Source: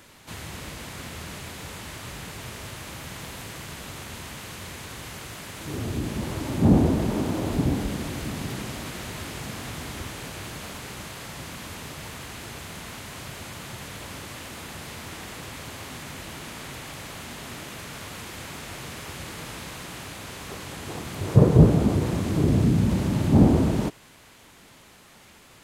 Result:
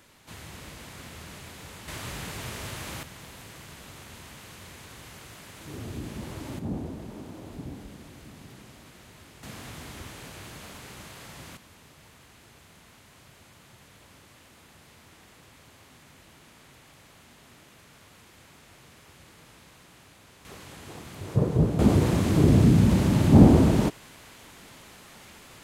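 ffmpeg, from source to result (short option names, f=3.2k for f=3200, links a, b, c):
-af "asetnsamples=n=441:p=0,asendcmd='1.88 volume volume 1dB;3.03 volume volume -7.5dB;6.59 volume volume -15.5dB;9.43 volume volume -6.5dB;11.57 volume volume -15.5dB;20.45 volume volume -8dB;21.79 volume volume 2.5dB',volume=-6dB"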